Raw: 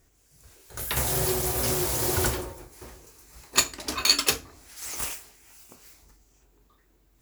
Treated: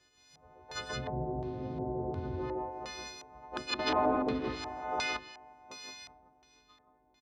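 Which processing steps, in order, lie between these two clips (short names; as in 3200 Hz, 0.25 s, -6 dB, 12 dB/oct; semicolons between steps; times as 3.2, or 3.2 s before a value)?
frequency quantiser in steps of 3 st; treble ducked by the level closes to 320 Hz, closed at -14 dBFS; 3.79–5 sample leveller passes 3; in parallel at 0 dB: compressor, threshold -37 dBFS, peak gain reduction 14 dB; on the sum: HPF 200 Hz 6 dB/oct; high shelf 4900 Hz -11 dB; sample leveller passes 1; on a send: loudspeakers at several distances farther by 46 m -9 dB, 58 m -2 dB; on the sum: LFO low-pass square 1.4 Hz 760–4200 Hz; gain -8 dB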